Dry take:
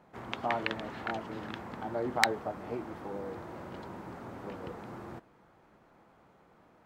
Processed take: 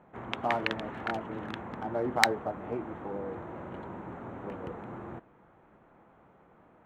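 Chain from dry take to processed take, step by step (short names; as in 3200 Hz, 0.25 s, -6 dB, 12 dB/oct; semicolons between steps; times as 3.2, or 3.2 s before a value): Wiener smoothing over 9 samples; gain +2.5 dB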